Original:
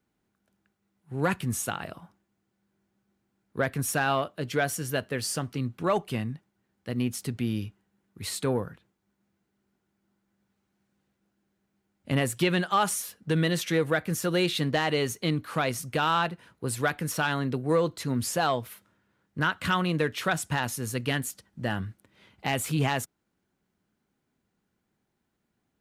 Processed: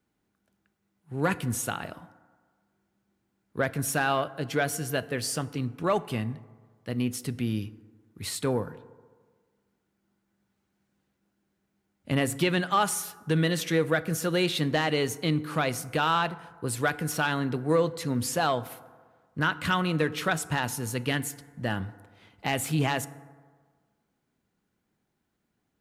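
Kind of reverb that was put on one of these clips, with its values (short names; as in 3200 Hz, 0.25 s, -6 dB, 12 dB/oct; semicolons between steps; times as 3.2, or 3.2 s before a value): FDN reverb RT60 1.6 s, low-frequency decay 0.85×, high-frequency decay 0.4×, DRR 15.5 dB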